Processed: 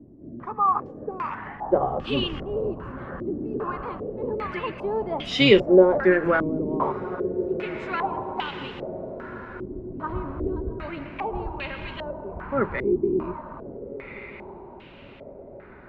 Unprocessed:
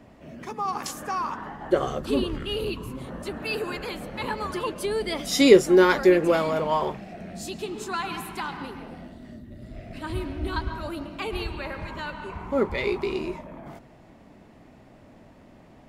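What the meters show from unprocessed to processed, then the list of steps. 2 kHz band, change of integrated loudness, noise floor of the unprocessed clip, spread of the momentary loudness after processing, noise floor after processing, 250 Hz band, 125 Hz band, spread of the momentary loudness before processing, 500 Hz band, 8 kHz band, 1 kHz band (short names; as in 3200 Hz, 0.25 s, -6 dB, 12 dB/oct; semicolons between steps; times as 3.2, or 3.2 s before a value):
+0.5 dB, 0.0 dB, -52 dBFS, 19 LU, -45 dBFS, 0.0 dB, +1.5 dB, 21 LU, +0.5 dB, under -15 dB, +2.0 dB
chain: octaver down 1 oct, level -5 dB; diffused feedback echo 1.438 s, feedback 53%, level -14.5 dB; stepped low-pass 2.5 Hz 330–3000 Hz; gain -2.5 dB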